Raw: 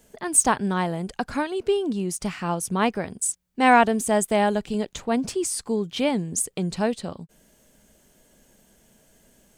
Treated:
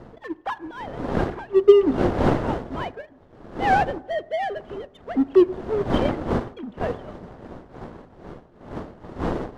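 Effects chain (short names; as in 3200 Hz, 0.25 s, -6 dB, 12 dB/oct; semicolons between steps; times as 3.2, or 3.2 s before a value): sine-wave speech; wind noise 510 Hz -28 dBFS; bell 2400 Hz -8 dB 0.27 oct; in parallel at -11.5 dB: hard clip -15.5 dBFS, distortion -10 dB; on the sum: power-law curve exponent 1.4; on a send at -17 dB: reverb RT60 0.85 s, pre-delay 4 ms; on the sum: gain +1.5 dB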